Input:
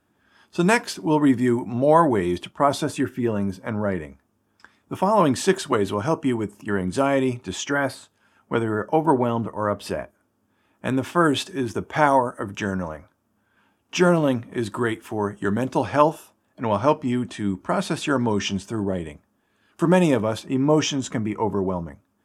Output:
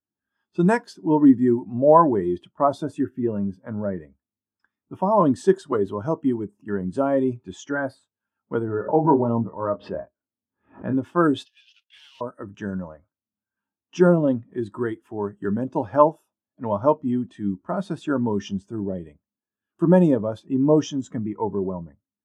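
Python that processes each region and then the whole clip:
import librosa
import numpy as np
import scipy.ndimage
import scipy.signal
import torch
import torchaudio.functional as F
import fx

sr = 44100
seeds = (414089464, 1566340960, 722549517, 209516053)

y = fx.chain(x, sr, fx.lowpass(hz=2400.0, slope=12),
    fx.doubler(ms=26.0, db=-7.0),
    fx.pre_swell(db_per_s=120.0), at=(8.66, 10.95))
y = fx.chain(y, sr, fx.cvsd(bps=32000),
    fx.ladder_highpass(hz=2600.0, resonance_pct=70),
    fx.leveller(passes=3), at=(11.45, 12.21))
y = fx.notch(y, sr, hz=2300.0, q=22.0)
y = fx.dynamic_eq(y, sr, hz=2500.0, q=2.3, threshold_db=-41.0, ratio=4.0, max_db=-5)
y = fx.spectral_expand(y, sr, expansion=1.5)
y = y * 10.0 ** (1.0 / 20.0)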